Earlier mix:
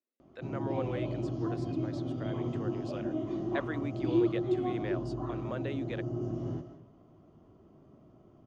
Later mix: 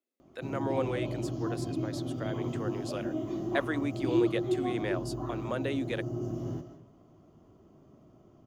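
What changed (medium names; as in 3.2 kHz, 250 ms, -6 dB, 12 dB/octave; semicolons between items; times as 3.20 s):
speech +4.5 dB; master: remove distance through air 120 m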